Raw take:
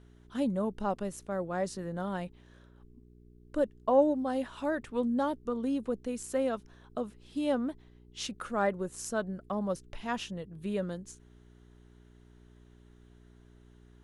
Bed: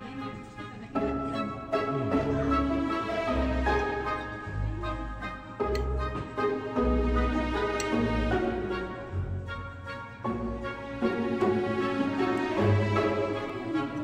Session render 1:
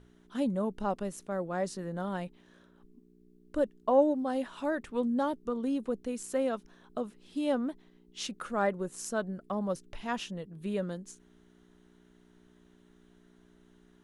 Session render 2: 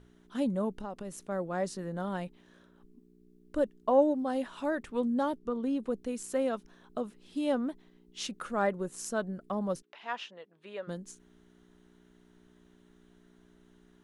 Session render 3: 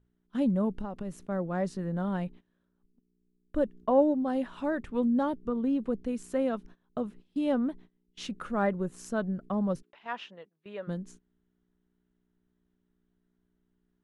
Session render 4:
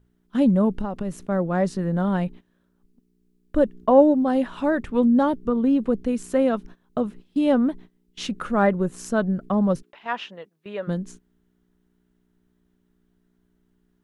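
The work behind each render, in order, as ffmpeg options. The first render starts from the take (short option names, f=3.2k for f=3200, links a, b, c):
-af "bandreject=f=60:t=h:w=4,bandreject=f=120:t=h:w=4"
-filter_complex "[0:a]asettb=1/sr,asplit=3[a][b][c];[a]atrim=end=0.724[d];[b]atrim=start=0.72:end=1.29,asetpts=PTS-STARTPTS,afade=t=in:d=0.004:c=qsin,afade=t=out:st=0.566:d=0.004:c=qsin,acompressor=threshold=-35dB:ratio=6:attack=3.2:release=140:knee=1:detection=peak[e];[c]atrim=start=1.286[f];[d][e]acrossfade=d=0.004:c1=hsin:c2=qsin[g];[g][f]acrossfade=d=0.004:c1=qsin:c2=hsin,asettb=1/sr,asplit=3[h][i][j];[h]atrim=end=5.384[k];[i]atrim=start=5.38:end=5.86,asetpts=PTS-STARTPTS,afade=t=in:d=0.004:c=qsin,afade=t=out:st=0.476:d=0.004:c=qsin,highshelf=f=6.5k:g=-9.5[l];[j]atrim=start=5.856[m];[k][l]acrossfade=d=0.004:c1=hsin:c2=qsin[n];[n][m]acrossfade=d=0.004:c1=qsin:c2=hsin,asplit=3[o][p][q];[o]afade=t=out:st=9.81:d=0.02[r];[p]highpass=640,lowpass=3.6k,afade=t=in:st=9.81:d=0.02,afade=t=out:st=10.87:d=0.02[s];[q]afade=t=in:st=10.87:d=0.02[t];[r][s][t]amix=inputs=3:normalize=0"
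-af "agate=range=-19dB:threshold=-51dB:ratio=16:detection=peak,bass=f=250:g=8,treble=f=4k:g=-8"
-af "volume=8.5dB"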